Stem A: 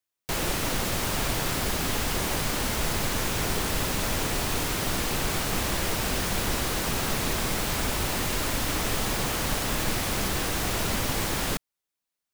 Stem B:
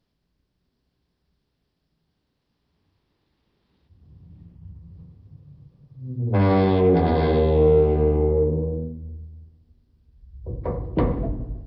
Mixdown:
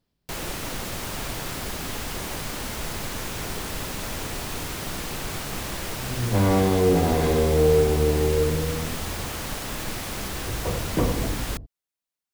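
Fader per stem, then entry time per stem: -4.0, -2.0 dB; 0.00, 0.00 s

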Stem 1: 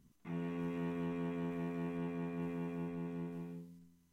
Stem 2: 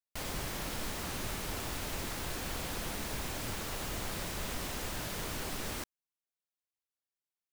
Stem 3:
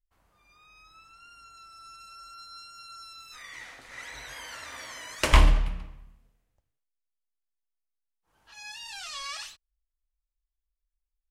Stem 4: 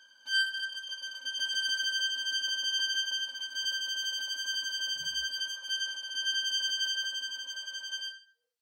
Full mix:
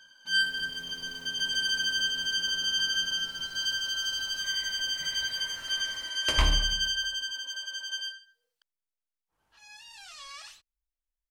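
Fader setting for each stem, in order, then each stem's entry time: -14.5, -17.0, -7.5, +2.5 dB; 0.00, 0.25, 1.05, 0.00 s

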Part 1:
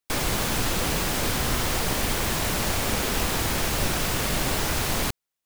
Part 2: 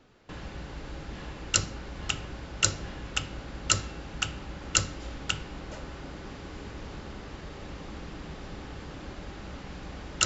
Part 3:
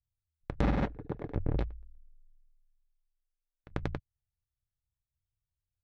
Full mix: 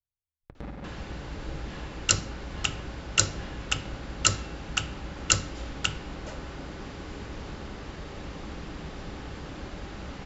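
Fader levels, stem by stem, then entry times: off, +2.0 dB, -11.5 dB; off, 0.55 s, 0.00 s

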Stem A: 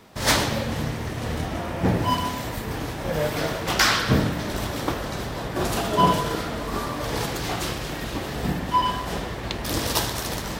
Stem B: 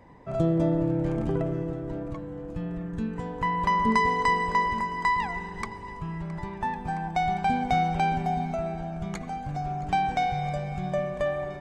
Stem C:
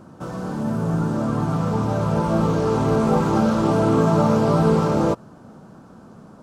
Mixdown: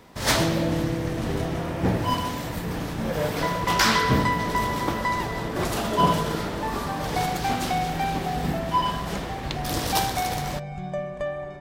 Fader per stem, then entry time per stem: -2.0, -2.0, -17.5 dB; 0.00, 0.00, 1.55 s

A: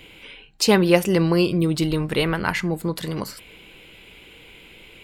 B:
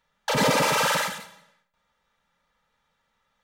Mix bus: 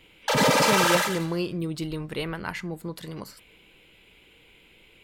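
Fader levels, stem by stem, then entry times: -9.5, +1.0 dB; 0.00, 0.00 s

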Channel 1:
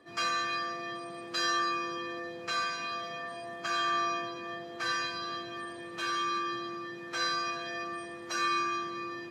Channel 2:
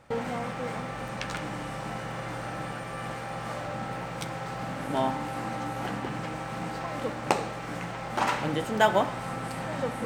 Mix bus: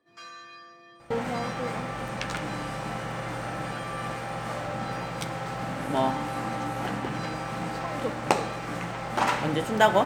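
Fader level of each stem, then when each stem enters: -13.5, +2.0 dB; 0.00, 1.00 s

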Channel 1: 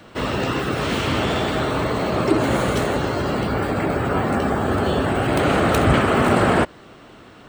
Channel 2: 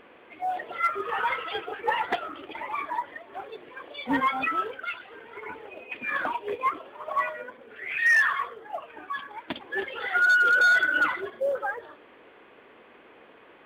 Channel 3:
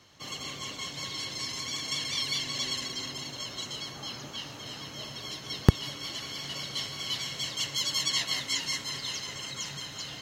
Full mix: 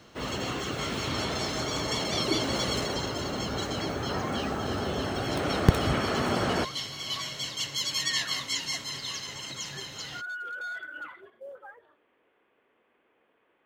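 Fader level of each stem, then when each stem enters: -11.0, -17.0, -0.5 dB; 0.00, 0.00, 0.00 s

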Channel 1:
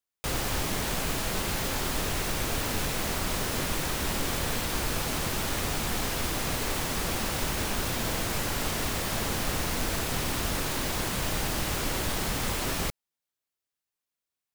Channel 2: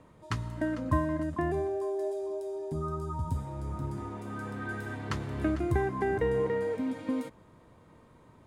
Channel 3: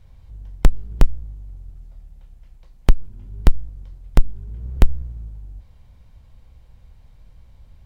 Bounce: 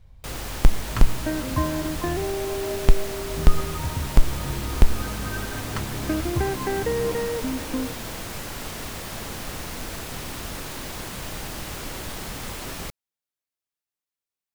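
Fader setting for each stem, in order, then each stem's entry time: -4.0, +3.0, -2.5 dB; 0.00, 0.65, 0.00 s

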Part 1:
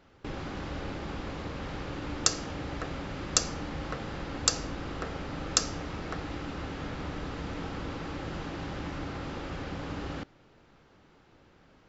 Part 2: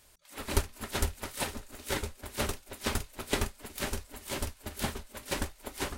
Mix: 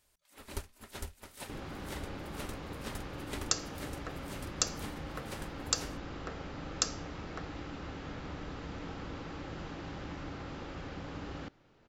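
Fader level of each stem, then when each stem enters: -5.5, -12.0 dB; 1.25, 0.00 s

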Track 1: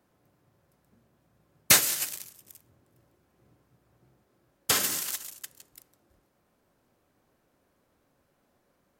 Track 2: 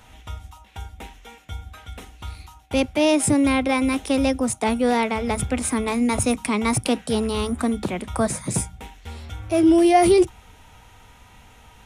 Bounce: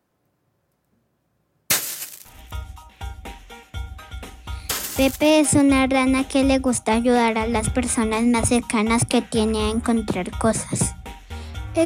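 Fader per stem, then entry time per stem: -1.0, +2.5 dB; 0.00, 2.25 s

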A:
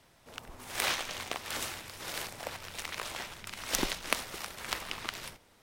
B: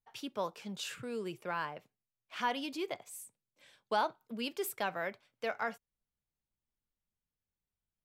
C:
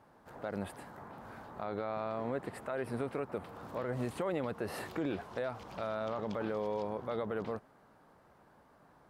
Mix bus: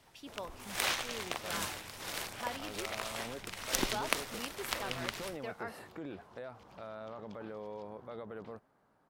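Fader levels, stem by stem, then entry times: -1.5, -7.5, -8.5 dB; 0.00, 0.00, 1.00 s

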